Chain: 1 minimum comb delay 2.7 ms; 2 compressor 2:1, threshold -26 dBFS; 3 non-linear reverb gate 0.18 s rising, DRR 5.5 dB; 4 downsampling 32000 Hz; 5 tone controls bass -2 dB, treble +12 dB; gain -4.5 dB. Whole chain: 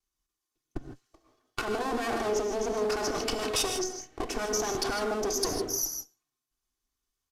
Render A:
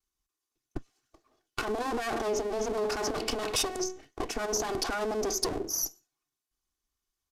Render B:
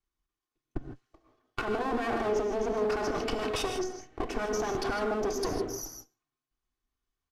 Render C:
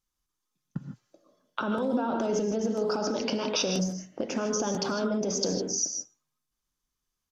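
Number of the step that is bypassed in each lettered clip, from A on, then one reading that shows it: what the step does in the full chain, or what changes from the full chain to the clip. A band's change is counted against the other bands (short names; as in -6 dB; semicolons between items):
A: 3, momentary loudness spread change -1 LU; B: 5, 8 kHz band -10.0 dB; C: 1, 125 Hz band +8.0 dB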